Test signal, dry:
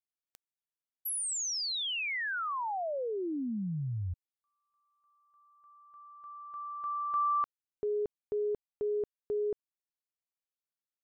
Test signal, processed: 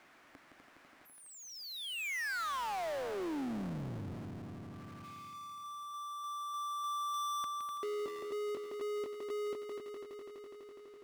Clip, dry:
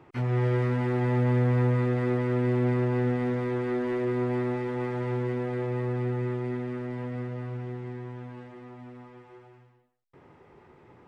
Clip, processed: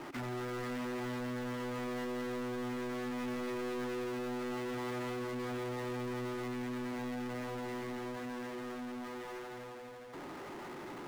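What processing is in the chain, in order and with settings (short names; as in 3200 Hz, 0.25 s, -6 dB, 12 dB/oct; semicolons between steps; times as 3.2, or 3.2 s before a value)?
limiter -24 dBFS; speaker cabinet 260–2100 Hz, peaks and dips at 280 Hz +3 dB, 460 Hz -8 dB, 900 Hz -3 dB; overloaded stage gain 34 dB; on a send: multi-head echo 83 ms, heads second and third, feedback 57%, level -12.5 dB; on the sum: power-law curve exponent 0.35; gain -5 dB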